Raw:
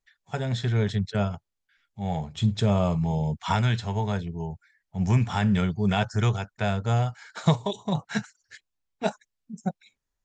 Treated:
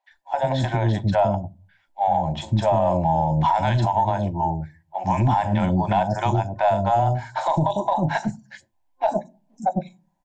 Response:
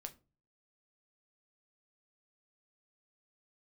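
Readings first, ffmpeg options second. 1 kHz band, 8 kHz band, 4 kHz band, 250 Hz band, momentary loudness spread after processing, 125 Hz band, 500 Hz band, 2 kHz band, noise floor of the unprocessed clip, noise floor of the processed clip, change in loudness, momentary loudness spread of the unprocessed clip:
+12.5 dB, can't be measured, −1.5 dB, +1.5 dB, 9 LU, +1.5 dB, +8.0 dB, +1.5 dB, −83 dBFS, −67 dBFS, +4.5 dB, 11 LU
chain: -filter_complex "[0:a]equalizer=frequency=840:width_type=o:width=1.5:gain=10.5,acrossover=split=470|5300[link_01][link_02][link_03];[link_03]adelay=40[link_04];[link_01]adelay=100[link_05];[link_05][link_02][link_04]amix=inputs=3:normalize=0,asplit=2[link_06][link_07];[1:a]atrim=start_sample=2205,lowshelf=frequency=140:gain=10.5[link_08];[link_07][link_08]afir=irnorm=-1:irlink=0,volume=-4dB[link_09];[link_06][link_09]amix=inputs=2:normalize=0,aeval=exprs='0.75*(cos(1*acos(clip(val(0)/0.75,-1,1)))-cos(1*PI/2))+0.0473*(cos(4*acos(clip(val(0)/0.75,-1,1)))-cos(4*PI/2))':channel_layout=same,superequalizer=6b=2.51:7b=0.398:8b=2.51:9b=2.82:10b=0.501,alimiter=limit=-11dB:level=0:latency=1:release=127"

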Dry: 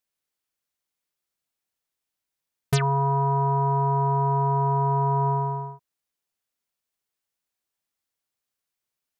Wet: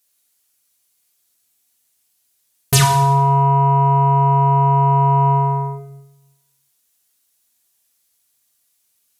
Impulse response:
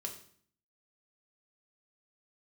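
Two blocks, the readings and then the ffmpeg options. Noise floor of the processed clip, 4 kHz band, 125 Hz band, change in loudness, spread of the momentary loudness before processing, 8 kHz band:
−66 dBFS, +15.0 dB, +8.5 dB, +8.5 dB, 4 LU, can't be measured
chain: -filter_complex "[0:a]crystalizer=i=3.5:c=0,acontrast=87[link_01];[1:a]atrim=start_sample=2205,asetrate=26901,aresample=44100[link_02];[link_01][link_02]afir=irnorm=-1:irlink=0"

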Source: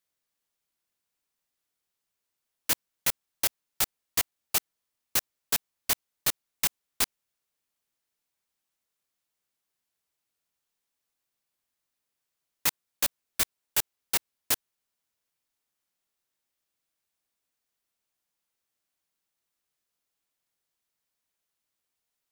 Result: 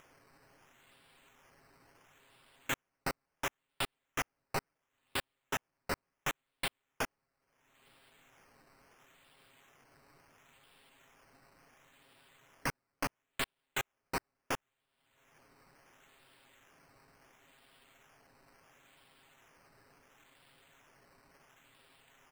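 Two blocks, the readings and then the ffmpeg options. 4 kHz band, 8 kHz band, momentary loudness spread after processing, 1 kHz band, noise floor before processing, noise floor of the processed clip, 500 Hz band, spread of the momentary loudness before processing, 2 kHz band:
−9.5 dB, −15.5 dB, 3 LU, +0.5 dB, −85 dBFS, below −85 dBFS, +0.5 dB, 2 LU, −2.0 dB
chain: -af "aecho=1:1:7.4:0.66,alimiter=limit=-17.5dB:level=0:latency=1:release=15,acompressor=mode=upward:threshold=-44dB:ratio=2.5,aresample=8000,asoftclip=type=hard:threshold=-33dB,aresample=44100,acrusher=samples=10:mix=1:aa=0.000001:lfo=1:lforange=6:lforate=0.72,volume=5dB"

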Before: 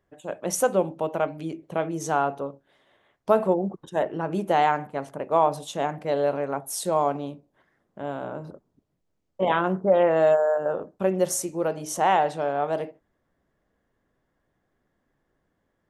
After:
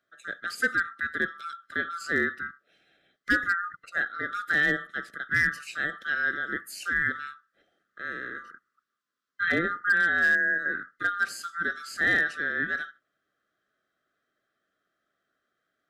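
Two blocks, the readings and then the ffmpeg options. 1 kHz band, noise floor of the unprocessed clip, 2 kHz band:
−10.5 dB, −75 dBFS, +13.0 dB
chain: -filter_complex "[0:a]afftfilt=real='real(if(lt(b,960),b+48*(1-2*mod(floor(b/48),2)),b),0)':imag='imag(if(lt(b,960),b+48*(1-2*mod(floor(b/48),2)),b),0)':win_size=2048:overlap=0.75,acrossover=split=190 5100:gain=0.0631 1 0.2[link_01][link_02][link_03];[link_01][link_02][link_03]amix=inputs=3:normalize=0,acrossover=split=3000[link_04][link_05];[link_05]acompressor=threshold=-45dB:ratio=4:attack=1:release=60[link_06];[link_04][link_06]amix=inputs=2:normalize=0,equalizer=frequency=1100:width=0.4:gain=-14,volume=25dB,asoftclip=hard,volume=-25dB,asuperstop=centerf=970:order=4:qfactor=2,volume=9dB"

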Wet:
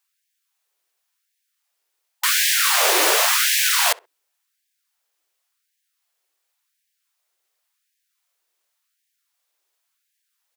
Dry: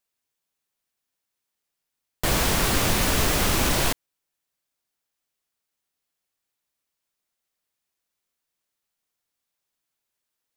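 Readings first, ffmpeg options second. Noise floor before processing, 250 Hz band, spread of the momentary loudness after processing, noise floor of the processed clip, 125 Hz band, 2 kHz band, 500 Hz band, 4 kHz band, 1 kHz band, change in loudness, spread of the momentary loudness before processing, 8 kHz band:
−83 dBFS, −11.0 dB, 5 LU, −76 dBFS, below −40 dB, +7.5 dB, +1.0 dB, +7.5 dB, +4.5 dB, +6.0 dB, 5 LU, +7.5 dB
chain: -filter_complex "[0:a]asplit=2[link_01][link_02];[link_02]adelay=64,lowpass=frequency=1600:poles=1,volume=-22dB,asplit=2[link_03][link_04];[link_04]adelay=64,lowpass=frequency=1600:poles=1,volume=0.24[link_05];[link_01][link_03][link_05]amix=inputs=3:normalize=0,afftfilt=real='re*gte(b*sr/1024,300*pow(1600/300,0.5+0.5*sin(2*PI*0.91*pts/sr)))':imag='im*gte(b*sr/1024,300*pow(1600/300,0.5+0.5*sin(2*PI*0.91*pts/sr)))':win_size=1024:overlap=0.75,volume=7.5dB"

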